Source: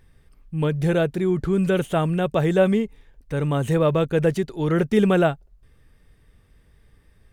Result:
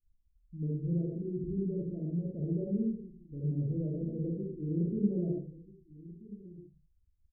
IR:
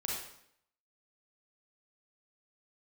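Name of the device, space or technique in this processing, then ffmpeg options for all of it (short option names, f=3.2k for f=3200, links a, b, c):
next room: -filter_complex "[0:a]asettb=1/sr,asplit=3[a][b][c];[a]atrim=end=3.414[d];[b]atrim=start=3.41:end=3.82,asetpts=PTS-STARTPTS,afade=t=in:d=0.004:c=qsin,afade=t=out:st=0.406:d=0.004:c=qsin,lowshelf=f=180:g=4.5[e];[c]atrim=start=3.816[f];[d][e]acrossfade=d=0.004:c1=hsin:c2=qsin[g];[g][f]acrossfade=d=0.004:c1=qsin:c2=hsin,lowpass=f=310:w=0.5412,lowpass=f=310:w=1.3066,asplit=2[h][i];[i]adelay=1283,volume=-17dB,highshelf=f=4k:g=-28.9[j];[h][j]amix=inputs=2:normalize=0[k];[1:a]atrim=start_sample=2205[l];[k][l]afir=irnorm=-1:irlink=0,afftdn=nr=24:nf=-36,lowshelf=f=260:g=-11,volume=-6dB"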